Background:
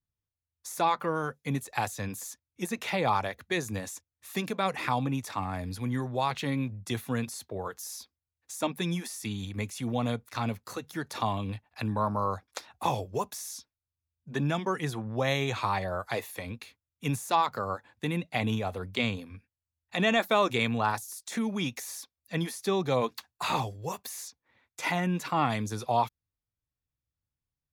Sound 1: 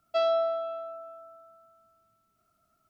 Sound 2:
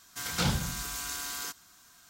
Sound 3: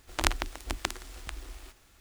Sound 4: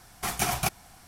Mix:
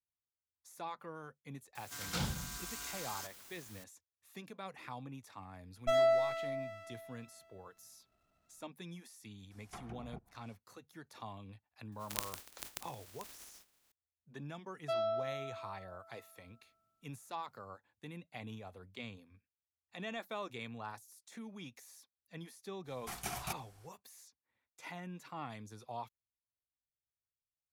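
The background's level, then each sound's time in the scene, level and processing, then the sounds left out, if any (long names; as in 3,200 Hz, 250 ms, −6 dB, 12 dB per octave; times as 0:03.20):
background −17.5 dB
0:01.75: mix in 2 −8.5 dB + bit-depth reduction 8 bits, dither triangular
0:05.73: mix in 1 −2 dB + windowed peak hold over 17 samples
0:09.50: mix in 4 −15 dB, fades 0.02 s + treble cut that deepens with the level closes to 420 Hz, closed at −25 dBFS
0:11.92: mix in 3 −14 dB + compressing power law on the bin magnitudes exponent 0.14
0:14.74: mix in 1 −9.5 dB
0:22.84: mix in 4 −13.5 dB, fades 0.05 s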